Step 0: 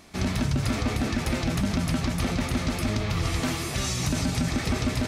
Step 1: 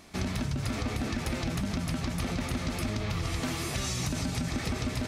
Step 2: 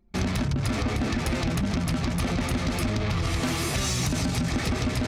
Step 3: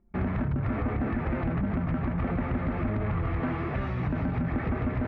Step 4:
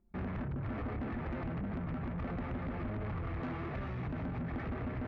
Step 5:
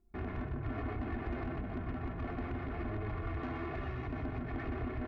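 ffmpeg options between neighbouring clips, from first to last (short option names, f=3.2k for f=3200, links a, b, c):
-af "acompressor=threshold=-26dB:ratio=6,volume=-1.5dB"
-af "aeval=exprs='0.112*(cos(1*acos(clip(val(0)/0.112,-1,1)))-cos(1*PI/2))+0.00891*(cos(5*acos(clip(val(0)/0.112,-1,1)))-cos(5*PI/2))':c=same,anlmdn=1,volume=4dB"
-af "lowpass=f=1.9k:w=0.5412,lowpass=f=1.9k:w=1.3066,volume=-2dB"
-af "asoftclip=type=tanh:threshold=-27.5dB,volume=-6dB"
-filter_complex "[0:a]aecho=1:1:2.8:0.61,asplit=2[a][b];[b]aecho=0:1:124:0.422[c];[a][c]amix=inputs=2:normalize=0,volume=-1.5dB"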